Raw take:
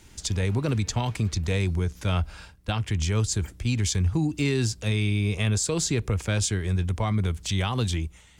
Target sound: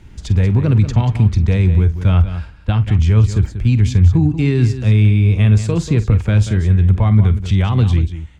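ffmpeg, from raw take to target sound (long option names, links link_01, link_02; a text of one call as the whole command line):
ffmpeg -i in.wav -filter_complex "[0:a]bass=frequency=250:gain=9,treble=frequency=4000:gain=-14,asplit=2[link_01][link_02];[link_02]aecho=0:1:47|187:0.178|0.266[link_03];[link_01][link_03]amix=inputs=2:normalize=0,volume=4.5dB" out.wav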